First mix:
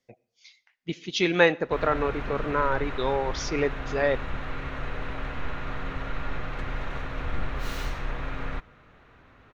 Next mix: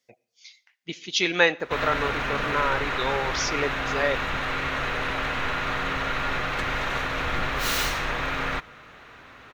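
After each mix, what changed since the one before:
background +9.0 dB; master: add tilt EQ +2.5 dB/octave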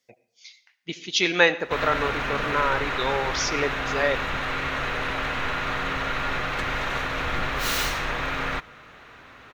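speech: send +9.0 dB

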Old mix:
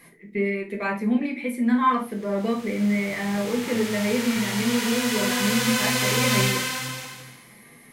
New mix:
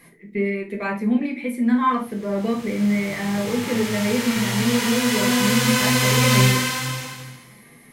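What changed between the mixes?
background: send +8.5 dB; master: add bass shelf 330 Hz +3.5 dB

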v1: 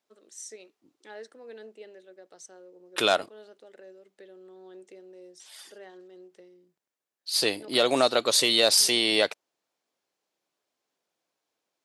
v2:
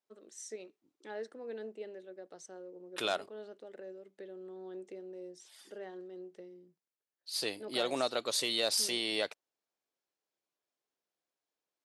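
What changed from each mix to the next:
first voice: add tilt EQ -2 dB/octave; second voice -10.5 dB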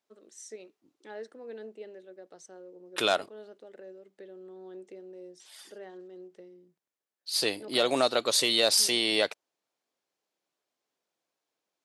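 second voice +7.5 dB

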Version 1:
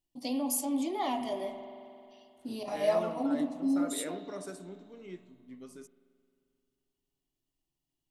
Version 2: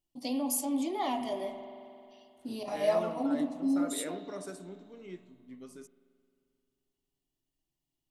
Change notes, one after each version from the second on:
no change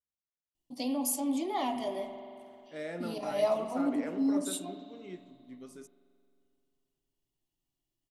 first voice: entry +0.55 s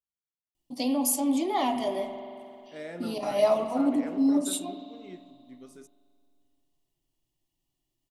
first voice +5.5 dB; second voice: send -6.0 dB

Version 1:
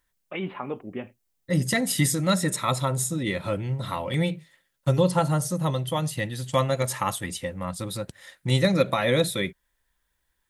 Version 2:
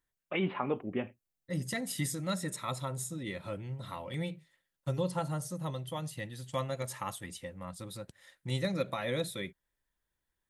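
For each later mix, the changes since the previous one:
second voice -11.5 dB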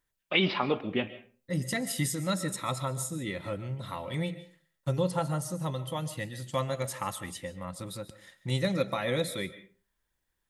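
first voice: remove Bessel low-pass 1.7 kHz, order 8; reverb: on, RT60 0.40 s

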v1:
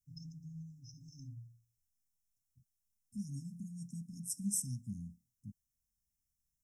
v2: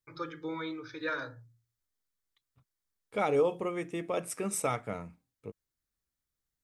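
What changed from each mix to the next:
first voice -3.5 dB; master: remove brick-wall FIR band-stop 260–5100 Hz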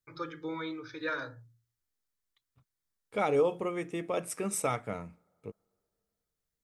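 reverb: on, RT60 2.5 s

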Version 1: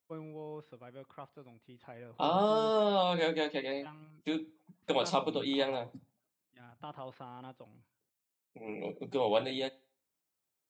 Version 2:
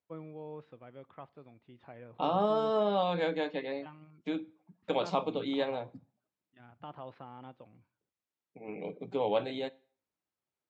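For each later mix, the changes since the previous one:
second voice: add treble shelf 6.1 kHz -7.5 dB; master: add low-pass 3.1 kHz 6 dB/octave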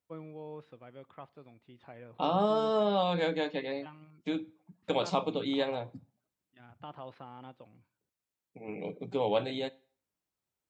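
second voice: remove high-pass 180 Hz 6 dB/octave; master: remove low-pass 3.1 kHz 6 dB/octave

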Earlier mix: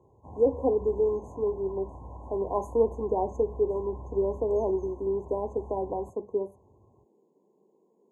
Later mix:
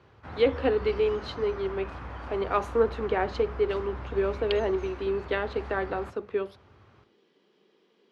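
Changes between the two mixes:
background: send on; master: remove brick-wall FIR band-stop 1.1–6.2 kHz

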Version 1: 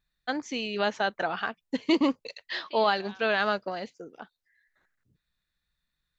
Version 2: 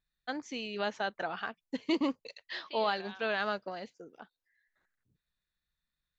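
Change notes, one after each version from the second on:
first voice -6.5 dB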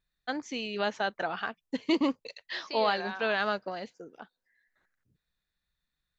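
first voice +3.5 dB; second voice: remove four-pole ladder low-pass 3.6 kHz, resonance 75%

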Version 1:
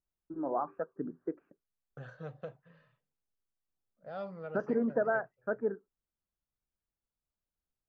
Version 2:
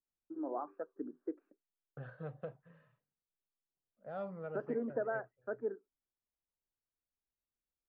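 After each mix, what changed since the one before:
first voice: add ladder high-pass 240 Hz, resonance 40%; second voice: add distance through air 370 m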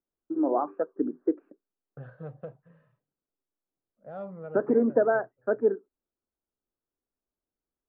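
first voice +10.5 dB; master: add tilt shelf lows +4.5 dB, about 1.4 kHz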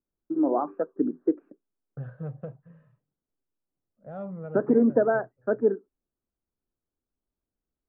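master: add tone controls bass +8 dB, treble -9 dB

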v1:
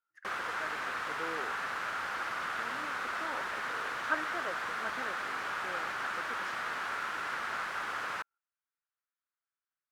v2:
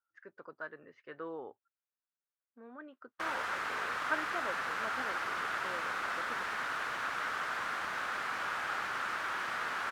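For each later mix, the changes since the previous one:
speech: add distance through air 120 m; background: entry +2.95 s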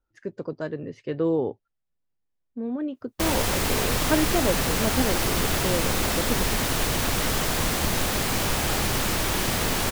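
master: remove band-pass filter 1.4 kHz, Q 3.1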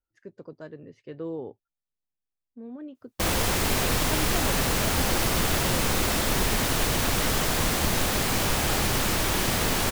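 speech -10.5 dB

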